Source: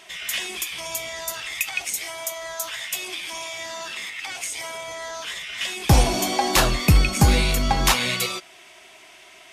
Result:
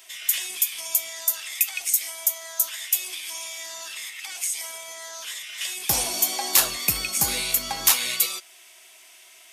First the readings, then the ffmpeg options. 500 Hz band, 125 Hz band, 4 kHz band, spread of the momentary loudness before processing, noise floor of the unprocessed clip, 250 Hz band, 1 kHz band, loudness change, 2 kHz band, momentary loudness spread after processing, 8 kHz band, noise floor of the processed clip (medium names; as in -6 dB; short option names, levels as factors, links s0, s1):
-11.0 dB, -21.0 dB, -2.0 dB, 13 LU, -48 dBFS, -15.5 dB, -9.0 dB, 0.0 dB, -5.5 dB, 14 LU, +4.0 dB, -51 dBFS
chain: -af "aemphasis=mode=production:type=riaa,volume=0.376"